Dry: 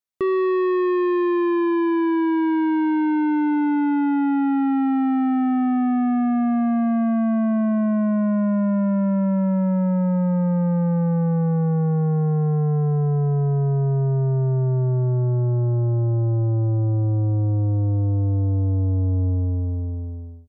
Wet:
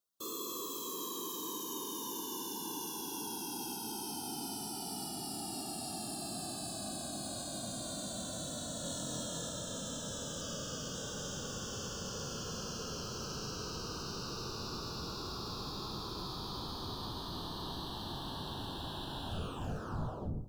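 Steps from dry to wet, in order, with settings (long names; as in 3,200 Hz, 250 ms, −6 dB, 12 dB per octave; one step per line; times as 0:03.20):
0:10.41–0:10.95: high-shelf EQ 2,800 Hz −8.5 dB
wave folding −36.5 dBFS
random phases in short frames
hard clipping −34.5 dBFS, distortion −30 dB
Butterworth band-reject 2,100 Hz, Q 1.2
0:08.81–0:09.49: flutter between parallel walls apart 4 metres, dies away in 0.27 s
convolution reverb RT60 0.80 s, pre-delay 48 ms, DRR 16 dB
level +3.5 dB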